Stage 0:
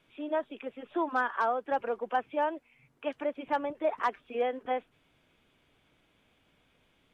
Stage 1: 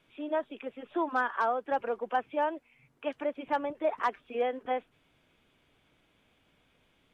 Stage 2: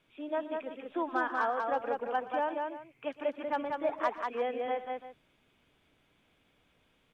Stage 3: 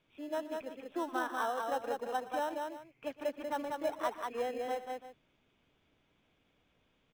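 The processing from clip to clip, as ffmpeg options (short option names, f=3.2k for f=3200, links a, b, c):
-af anull
-af "aecho=1:1:119|191|338:0.126|0.668|0.188,volume=-3dB"
-filter_complex "[0:a]aresample=16000,aresample=44100,asplit=2[a][b];[b]acrusher=samples=19:mix=1:aa=0.000001,volume=-10dB[c];[a][c]amix=inputs=2:normalize=0,volume=-5dB"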